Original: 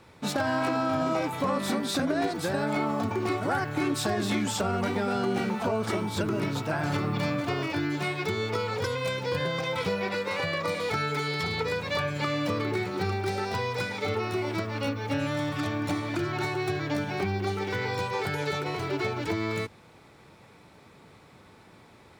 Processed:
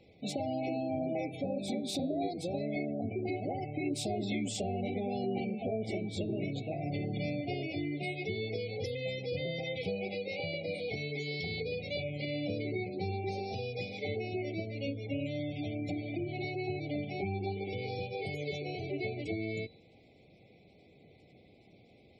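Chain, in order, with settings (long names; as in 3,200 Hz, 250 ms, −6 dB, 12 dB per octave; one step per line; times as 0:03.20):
gate on every frequency bin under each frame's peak −25 dB strong
hum removal 151.9 Hz, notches 29
brick-wall band-stop 810–2,000 Hz
noise in a band 95–540 Hz −61 dBFS
level −6 dB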